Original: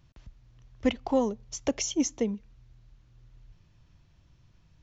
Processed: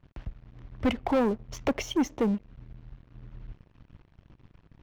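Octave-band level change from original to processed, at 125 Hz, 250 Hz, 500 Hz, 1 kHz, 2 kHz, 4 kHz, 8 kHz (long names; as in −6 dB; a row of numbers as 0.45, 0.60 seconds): +6.5 dB, +1.5 dB, +0.5 dB, +3.5 dB, +4.0 dB, −1.5 dB, can't be measured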